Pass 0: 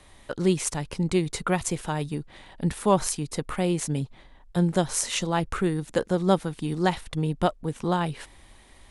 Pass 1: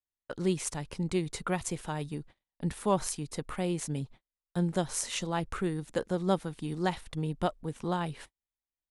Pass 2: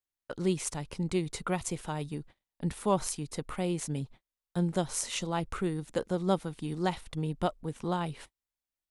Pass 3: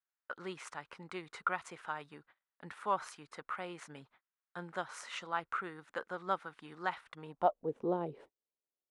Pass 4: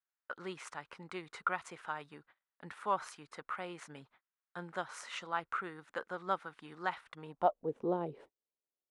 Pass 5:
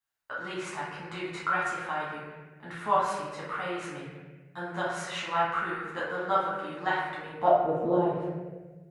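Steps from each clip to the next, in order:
gate -41 dBFS, range -44 dB; gain -6.5 dB
dynamic EQ 1700 Hz, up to -5 dB, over -58 dBFS, Q 7.2
band-pass sweep 1400 Hz -> 440 Hz, 7.2–7.71; gain +5 dB
nothing audible
reverb RT60 1.3 s, pre-delay 9 ms, DRR -8.5 dB

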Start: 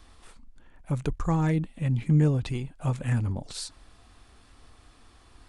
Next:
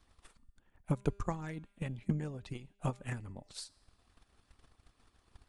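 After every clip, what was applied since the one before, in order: transient shaper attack +10 dB, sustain -3 dB; harmonic-percussive split harmonic -9 dB; resonator 200 Hz, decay 1 s, mix 40%; gain -6 dB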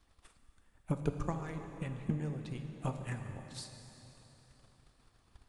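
plate-style reverb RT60 3.7 s, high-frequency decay 0.85×, DRR 5.5 dB; gain -1.5 dB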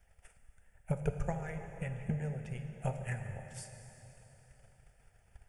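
fixed phaser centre 1100 Hz, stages 6; gain +4 dB

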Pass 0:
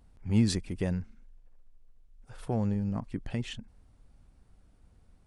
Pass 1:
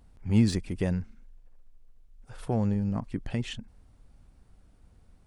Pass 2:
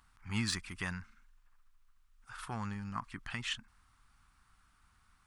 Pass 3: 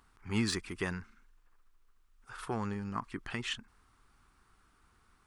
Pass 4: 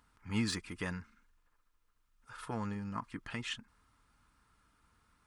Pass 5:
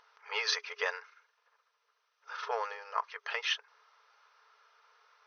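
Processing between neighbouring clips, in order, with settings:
de-esser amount 75%; gain +2.5 dB
resonant low shelf 800 Hz -14 dB, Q 3; gain +1 dB
bell 400 Hz +14.5 dB 1.1 oct
notch comb 380 Hz; gain -1.5 dB
FFT band-pass 410–6300 Hz; gain +8.5 dB

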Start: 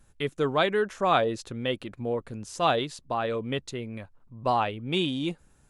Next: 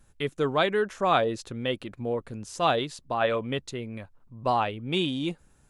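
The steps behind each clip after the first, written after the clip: spectral gain 3.21–3.47, 530–3600 Hz +7 dB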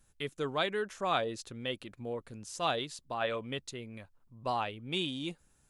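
high shelf 2500 Hz +7.5 dB; gain -9 dB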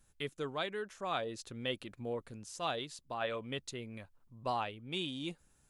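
vocal rider within 3 dB 0.5 s; gain -3.5 dB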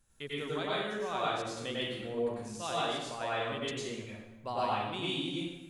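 plate-style reverb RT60 1 s, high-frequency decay 0.85×, pre-delay 85 ms, DRR -7.5 dB; gain -3.5 dB

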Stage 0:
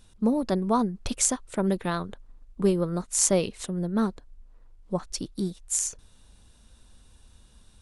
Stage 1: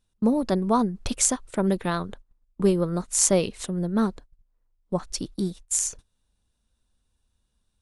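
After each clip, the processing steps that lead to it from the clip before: gate -42 dBFS, range -20 dB; gain +2 dB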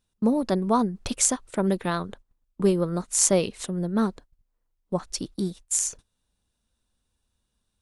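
low shelf 71 Hz -7 dB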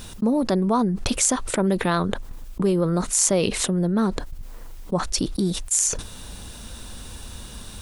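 fast leveller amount 70%; gain -1.5 dB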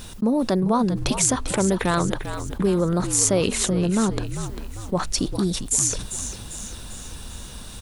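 frequency-shifting echo 0.397 s, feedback 50%, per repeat -60 Hz, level -10 dB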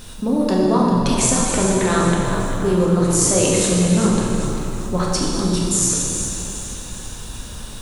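plate-style reverb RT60 2.9 s, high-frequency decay 0.75×, DRR -4 dB; gain -1 dB

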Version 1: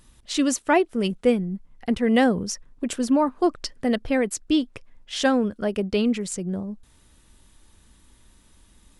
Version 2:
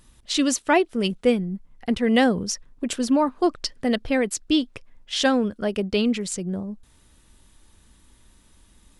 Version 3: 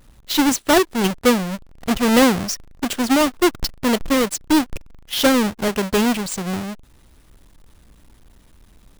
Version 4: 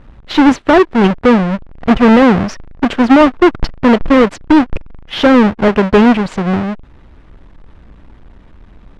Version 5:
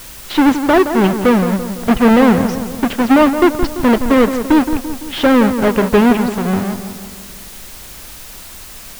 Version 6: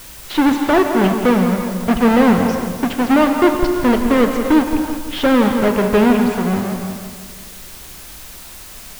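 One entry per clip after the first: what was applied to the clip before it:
dynamic EQ 3900 Hz, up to +5 dB, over -43 dBFS, Q 0.93
half-waves squared off
LPF 2100 Hz 12 dB/oct; maximiser +11.5 dB; gain -1 dB
added noise white -32 dBFS; on a send: darkening echo 0.169 s, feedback 55%, low-pass 2000 Hz, level -9 dB; on the sum: gain -3 dB
non-linear reverb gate 0.39 s flat, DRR 5.5 dB; gain -3 dB

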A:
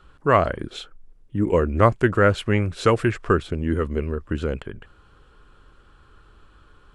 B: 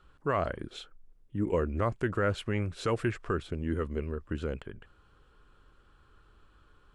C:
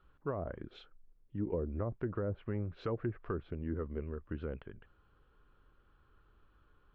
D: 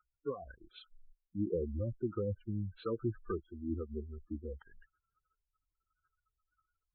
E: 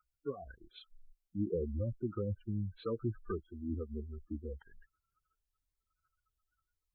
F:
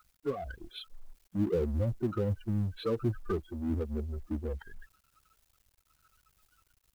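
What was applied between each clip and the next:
limiter -10 dBFS, peak gain reduction 7 dB; gain -8.5 dB
treble ducked by the level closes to 590 Hz, closed at -24 dBFS; air absorption 240 m; gain -5.5 dB
spectral gate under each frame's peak -15 dB strong; spectral noise reduction 24 dB; gain +2 dB
dynamic EQ 340 Hz, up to -4 dB, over -52 dBFS, Q 6.7; cascading phaser rising 1 Hz; gain +1 dB
G.711 law mismatch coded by mu; gain +4 dB

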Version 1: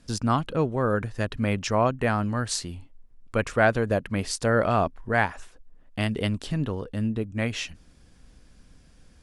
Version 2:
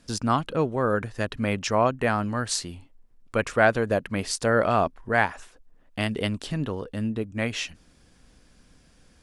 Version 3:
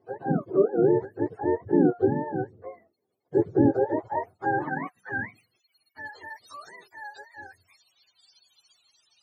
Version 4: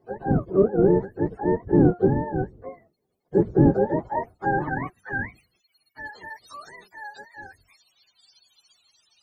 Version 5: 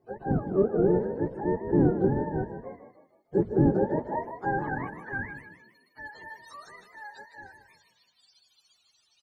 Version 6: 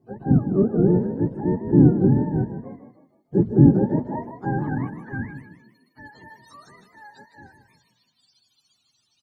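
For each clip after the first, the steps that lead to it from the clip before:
low shelf 150 Hz -7 dB; gain +1.5 dB
spectrum mirrored in octaves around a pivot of 430 Hz; band-pass sweep 410 Hz -> 4400 Hz, 3.5–6.22; gain +8.5 dB
octaver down 1 oct, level -1 dB; gain +2 dB
frequency-shifting echo 0.155 s, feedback 42%, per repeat +38 Hz, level -9.5 dB; gain -5 dB
ten-band EQ 125 Hz +10 dB, 250 Hz +10 dB, 500 Hz -4 dB, 2000 Hz -4 dB

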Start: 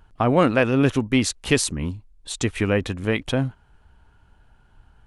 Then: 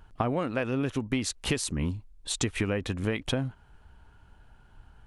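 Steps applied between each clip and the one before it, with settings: compressor 16:1, threshold -24 dBFS, peak gain reduction 14 dB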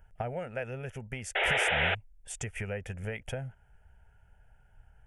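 painted sound noise, 1.35–1.95, 280–4100 Hz -20 dBFS; fixed phaser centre 1100 Hz, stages 6; gain -4 dB

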